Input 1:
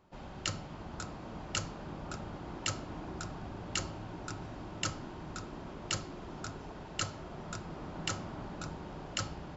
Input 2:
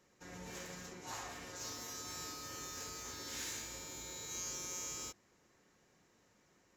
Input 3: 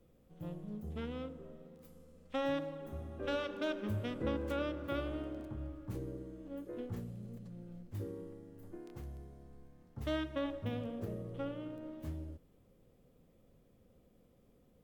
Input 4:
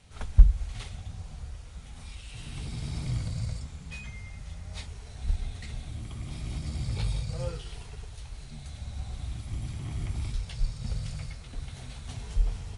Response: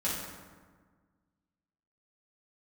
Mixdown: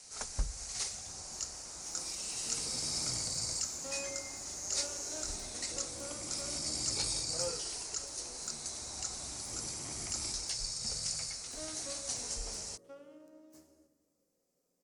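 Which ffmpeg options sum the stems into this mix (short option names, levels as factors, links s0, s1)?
-filter_complex "[0:a]alimiter=level_in=1.33:limit=0.0631:level=0:latency=1:release=164,volume=0.75,adelay=950,volume=0.355[s0];[1:a]adelay=250,volume=0.133[s1];[2:a]equalizer=f=65:w=1.5:g=-6,adelay=1500,volume=0.224,asplit=2[s2][s3];[s3]volume=0.211[s4];[3:a]volume=0.944[s5];[4:a]atrim=start_sample=2205[s6];[s4][s6]afir=irnorm=-1:irlink=0[s7];[s0][s1][s2][s5][s7]amix=inputs=5:normalize=0,aexciter=amount=15.3:drive=7.5:freq=5200,acrossover=split=260 6100:gain=0.112 1 0.0794[s8][s9][s10];[s8][s9][s10]amix=inputs=3:normalize=0"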